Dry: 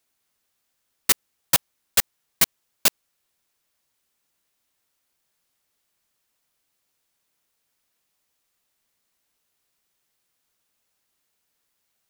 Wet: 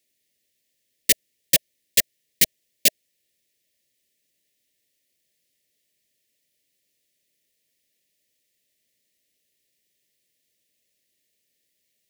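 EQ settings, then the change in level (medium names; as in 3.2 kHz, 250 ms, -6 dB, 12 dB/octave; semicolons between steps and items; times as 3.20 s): high-pass 83 Hz 6 dB/octave; Chebyshev band-stop 630–1800 Hz, order 4; +2.0 dB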